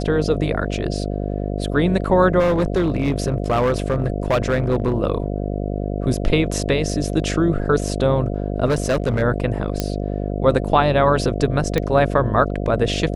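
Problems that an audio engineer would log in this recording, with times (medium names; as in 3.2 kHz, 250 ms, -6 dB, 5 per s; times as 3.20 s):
buzz 50 Hz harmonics 14 -24 dBFS
2.39–4.93 s: clipped -13.5 dBFS
8.65–9.23 s: clipped -14.5 dBFS
9.80 s: pop -6 dBFS
11.78 s: pop -7 dBFS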